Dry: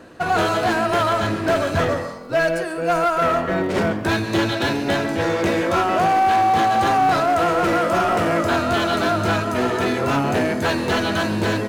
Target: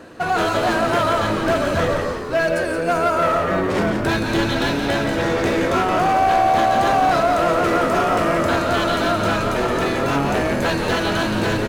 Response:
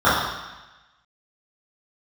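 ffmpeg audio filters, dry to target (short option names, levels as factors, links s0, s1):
-filter_complex "[0:a]bandreject=f=50:t=h:w=6,bandreject=f=100:t=h:w=6,bandreject=f=150:t=h:w=6,bandreject=f=200:t=h:w=6,bandreject=f=250:t=h:w=6,asplit=2[s0][s1];[s1]alimiter=limit=0.0891:level=0:latency=1,volume=0.944[s2];[s0][s2]amix=inputs=2:normalize=0,asplit=8[s3][s4][s5][s6][s7][s8][s9][s10];[s4]adelay=172,afreqshift=-75,volume=0.473[s11];[s5]adelay=344,afreqshift=-150,volume=0.251[s12];[s6]adelay=516,afreqshift=-225,volume=0.133[s13];[s7]adelay=688,afreqshift=-300,volume=0.0708[s14];[s8]adelay=860,afreqshift=-375,volume=0.0372[s15];[s9]adelay=1032,afreqshift=-450,volume=0.0197[s16];[s10]adelay=1204,afreqshift=-525,volume=0.0105[s17];[s3][s11][s12][s13][s14][s15][s16][s17]amix=inputs=8:normalize=0,volume=0.708"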